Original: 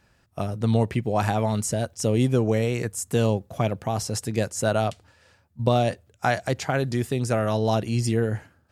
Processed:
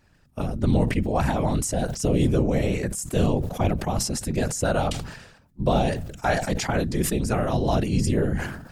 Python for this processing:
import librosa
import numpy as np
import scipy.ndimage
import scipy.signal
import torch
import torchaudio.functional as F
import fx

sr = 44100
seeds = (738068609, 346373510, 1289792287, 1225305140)

y = fx.low_shelf(x, sr, hz=71.0, db=11.5)
y = fx.whisperise(y, sr, seeds[0])
y = fx.sustainer(y, sr, db_per_s=63.0)
y = y * 10.0 ** (-1.5 / 20.0)